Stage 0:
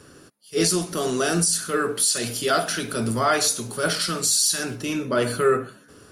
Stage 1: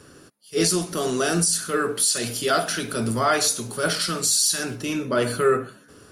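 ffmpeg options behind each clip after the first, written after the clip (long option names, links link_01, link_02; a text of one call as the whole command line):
ffmpeg -i in.wav -af anull out.wav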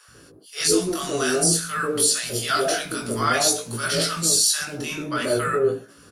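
ffmpeg -i in.wav -filter_complex "[0:a]acrossover=split=210|790[link_01][link_02][link_03];[link_01]adelay=80[link_04];[link_02]adelay=140[link_05];[link_04][link_05][link_03]amix=inputs=3:normalize=0,flanger=delay=17.5:depth=3.9:speed=0.51,volume=4.5dB" out.wav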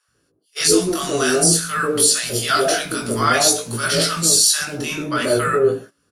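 ffmpeg -i in.wav -af "agate=range=-21dB:threshold=-38dB:ratio=16:detection=peak,volume=4.5dB" out.wav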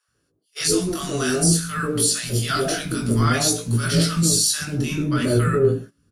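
ffmpeg -i in.wav -af "asubboost=boost=7:cutoff=250,volume=-5dB" out.wav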